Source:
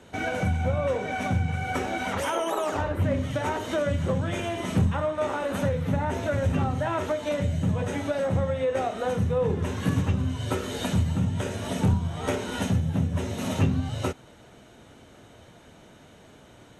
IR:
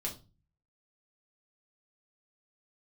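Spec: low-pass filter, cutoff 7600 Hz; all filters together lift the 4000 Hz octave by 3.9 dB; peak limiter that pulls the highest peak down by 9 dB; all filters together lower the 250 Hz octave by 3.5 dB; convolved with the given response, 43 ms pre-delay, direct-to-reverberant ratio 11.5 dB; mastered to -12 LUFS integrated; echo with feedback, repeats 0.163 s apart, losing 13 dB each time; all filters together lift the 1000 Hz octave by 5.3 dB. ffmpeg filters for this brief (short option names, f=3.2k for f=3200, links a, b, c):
-filter_complex "[0:a]lowpass=7.6k,equalizer=f=250:t=o:g=-5.5,equalizer=f=1k:t=o:g=7,equalizer=f=4k:t=o:g=5,alimiter=limit=-20.5dB:level=0:latency=1,aecho=1:1:163|326|489:0.224|0.0493|0.0108,asplit=2[a][b];[1:a]atrim=start_sample=2205,adelay=43[c];[b][c]afir=irnorm=-1:irlink=0,volume=-12.5dB[d];[a][d]amix=inputs=2:normalize=0,volume=17dB"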